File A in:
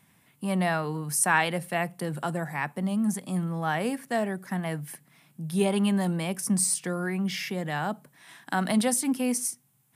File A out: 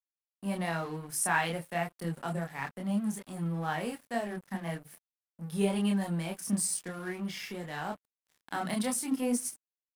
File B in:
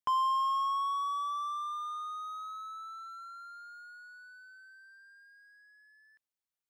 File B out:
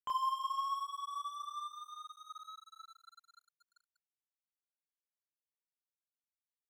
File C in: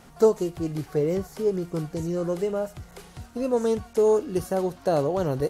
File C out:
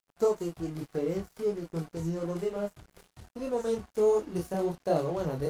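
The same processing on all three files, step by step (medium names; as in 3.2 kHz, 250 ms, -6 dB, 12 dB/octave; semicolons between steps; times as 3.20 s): chorus voices 6, 0.88 Hz, delay 27 ms, depth 3.5 ms; crossover distortion -46.5 dBFS; trim -2 dB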